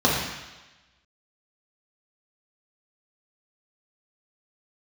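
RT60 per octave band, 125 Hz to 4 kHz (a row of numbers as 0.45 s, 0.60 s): 1.0 s, 1.0 s, 1.1 s, 1.1 s, 1.2 s, 1.2 s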